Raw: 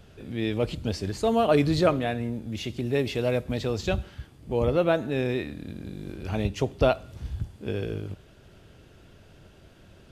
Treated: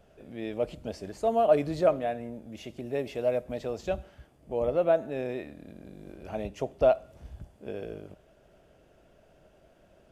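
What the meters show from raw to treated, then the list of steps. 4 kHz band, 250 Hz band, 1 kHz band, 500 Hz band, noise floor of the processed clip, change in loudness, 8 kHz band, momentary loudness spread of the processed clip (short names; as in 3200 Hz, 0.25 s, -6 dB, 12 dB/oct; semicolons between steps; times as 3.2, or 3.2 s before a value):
-12.5 dB, -8.0 dB, -1.5 dB, -1.0 dB, -61 dBFS, -2.5 dB, n/a, 21 LU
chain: fifteen-band EQ 100 Hz -9 dB, 630 Hz +11 dB, 4000 Hz -6 dB; gain -8.5 dB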